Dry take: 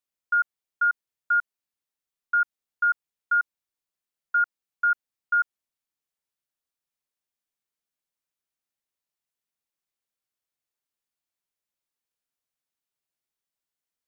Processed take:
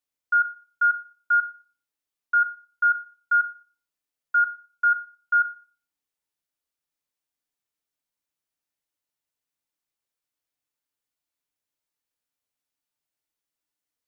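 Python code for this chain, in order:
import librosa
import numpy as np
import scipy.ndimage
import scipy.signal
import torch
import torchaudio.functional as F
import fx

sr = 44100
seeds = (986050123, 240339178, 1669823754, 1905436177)

y = fx.rev_fdn(x, sr, rt60_s=0.38, lf_ratio=1.2, hf_ratio=0.9, size_ms=20.0, drr_db=6.0)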